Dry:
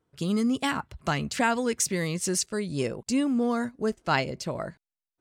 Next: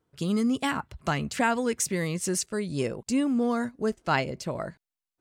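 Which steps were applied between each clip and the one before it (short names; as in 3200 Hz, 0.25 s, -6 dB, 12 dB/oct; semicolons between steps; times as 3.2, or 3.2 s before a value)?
dynamic EQ 4700 Hz, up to -4 dB, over -42 dBFS, Q 1.1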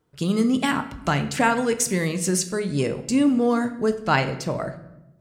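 reverb RT60 0.95 s, pre-delay 7 ms, DRR 8 dB; gain +4.5 dB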